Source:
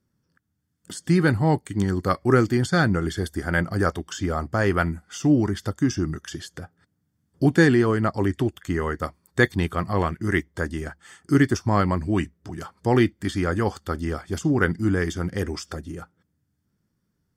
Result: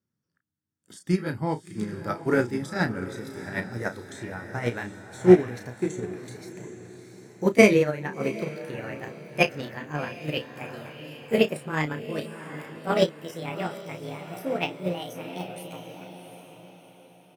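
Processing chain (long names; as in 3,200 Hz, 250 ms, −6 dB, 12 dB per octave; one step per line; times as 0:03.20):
pitch glide at a constant tempo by +11.5 semitones starting unshifted
high-pass filter 93 Hz
double-tracking delay 33 ms −6.5 dB
feedback delay with all-pass diffusion 734 ms, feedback 41%, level −7 dB
expander for the loud parts 2.5 to 1, over −22 dBFS
level +4.5 dB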